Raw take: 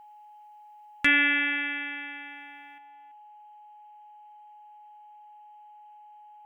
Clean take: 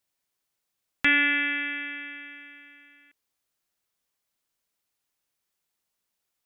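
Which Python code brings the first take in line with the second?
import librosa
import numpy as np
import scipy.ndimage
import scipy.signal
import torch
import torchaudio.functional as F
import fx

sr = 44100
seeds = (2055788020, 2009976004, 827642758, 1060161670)

y = fx.fix_declip(x, sr, threshold_db=-10.5)
y = fx.notch(y, sr, hz=840.0, q=30.0)
y = fx.noise_reduce(y, sr, print_start_s=5.35, print_end_s=5.85, reduce_db=30.0)
y = fx.fix_level(y, sr, at_s=2.78, step_db=9.0)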